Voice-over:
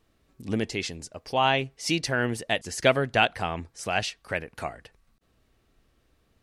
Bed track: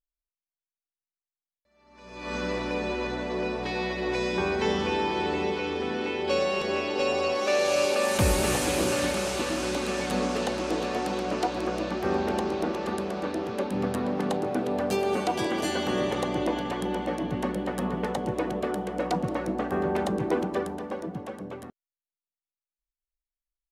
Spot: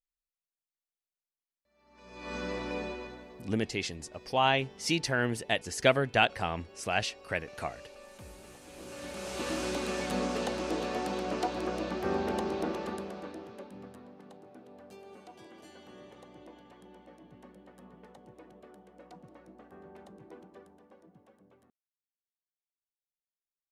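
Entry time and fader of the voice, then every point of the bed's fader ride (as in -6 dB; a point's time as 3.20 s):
3.00 s, -3.0 dB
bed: 2.81 s -6 dB
3.57 s -26.5 dB
8.61 s -26.5 dB
9.50 s -4.5 dB
12.74 s -4.5 dB
14.17 s -24.5 dB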